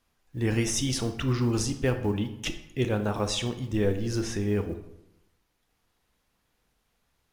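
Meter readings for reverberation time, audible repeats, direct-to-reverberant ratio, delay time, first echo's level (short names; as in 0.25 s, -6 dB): 0.85 s, none, 8.5 dB, none, none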